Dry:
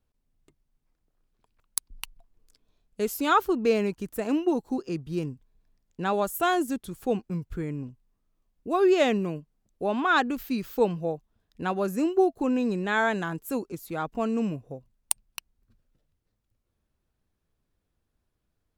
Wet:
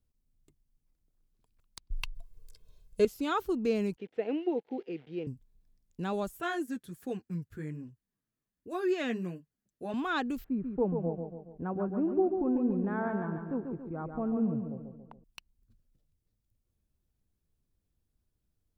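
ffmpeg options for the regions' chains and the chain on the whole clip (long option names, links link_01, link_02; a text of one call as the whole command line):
ffmpeg -i in.wav -filter_complex "[0:a]asettb=1/sr,asplit=3[link_01][link_02][link_03];[link_01]atrim=end=1.904[link_04];[link_02]atrim=start=1.9:end=3.05,asetpts=PTS-STARTPTS,afade=type=in:duration=0.004:curve=qsin,afade=type=out:start_time=1.146:duration=0.004:curve=qsin,aecho=1:1:1.9:1,atrim=end_sample=50715,acontrast=77[link_05];[link_03]atrim=start=3.046[link_06];[link_04][link_05]acrossfade=duration=0.004:curve1=hsin:curve2=qsin[link_07];[link_07][link_06]acrossfade=duration=0.004:curve1=qsin:curve2=hsin,asettb=1/sr,asplit=3[link_08][link_09][link_10];[link_08]atrim=end=3.964[link_11];[link_09]atrim=start=3.96:end=5.27,asetpts=PTS-STARTPTS,afade=type=in:duration=0.004:curve=qsin,afade=type=out:start_time=1.306:duration=0.004:curve=qsin,acrusher=bits=9:dc=4:mix=0:aa=0.000001,highpass=330,equalizer=frequency=470:width_type=q:width=4:gain=9,equalizer=frequency=770:width_type=q:width=4:gain=4,equalizer=frequency=1100:width_type=q:width=4:gain=-8,equalizer=frequency=2100:width_type=q:width=4:gain=5,equalizer=frequency=3100:width_type=q:width=4:gain=3,lowpass=frequency=3100:width=0.5412,lowpass=frequency=3100:width=1.3066[link_12];[link_10]atrim=start=5.266[link_13];[link_11][link_12]acrossfade=duration=0.004:curve1=hsin:curve2=qsin[link_14];[link_14][link_13]acrossfade=duration=0.004:curve1=qsin:curve2=hsin,asettb=1/sr,asplit=3[link_15][link_16][link_17];[link_15]atrim=end=6.404[link_18];[link_16]atrim=start=6.4:end=9.94,asetpts=PTS-STARTPTS,afade=type=in:duration=0.004:curve=qsin,afade=type=out:start_time=3.536:duration=0.004:curve=qsin,highpass=110,equalizer=frequency=1700:width=2.6:gain=11.5,flanger=delay=1.6:depth=7.4:regen=-27:speed=1.3:shape=triangular[link_19];[link_17]atrim=start=9.936[link_20];[link_18][link_19]acrossfade=duration=0.004:curve1=hsin:curve2=qsin[link_21];[link_21][link_20]acrossfade=duration=0.004:curve1=qsin:curve2=hsin,asettb=1/sr,asplit=3[link_22][link_23][link_24];[link_22]atrim=end=10.444[link_25];[link_23]atrim=start=10.44:end=15.24,asetpts=PTS-STARTPTS,afade=type=in:duration=0.004:curve=qsin,afade=type=out:start_time=4.796:duration=0.004:curve=qsin,lowpass=frequency=1400:width=0.5412,lowpass=frequency=1400:width=1.3066,aecho=1:1:140|280|420|560|700|840:0.501|0.246|0.12|0.059|0.0289|0.0142,atrim=end_sample=211680[link_26];[link_24]atrim=start=15.236[link_27];[link_25][link_26]acrossfade=duration=0.004:curve1=hsin:curve2=qsin[link_28];[link_28][link_27]acrossfade=duration=0.004:curve1=qsin:curve2=hsin,acrossover=split=4500[link_29][link_30];[link_30]acompressor=threshold=-52dB:ratio=4:attack=1:release=60[link_31];[link_29][link_31]amix=inputs=2:normalize=0,equalizer=frequency=1200:width=0.31:gain=-10.5" out.wav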